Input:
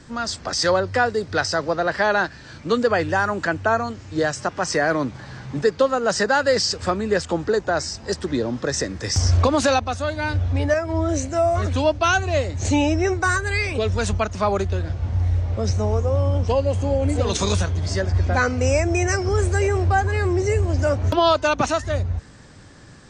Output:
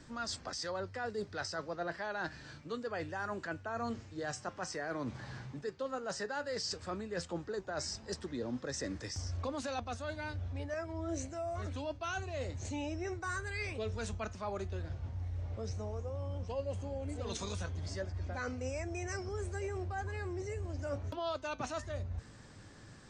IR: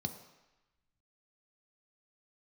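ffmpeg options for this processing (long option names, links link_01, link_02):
-af "areverse,acompressor=threshold=-27dB:ratio=6,areverse,flanger=delay=3.2:depth=6.3:regen=80:speed=0.11:shape=triangular,volume=-4.5dB"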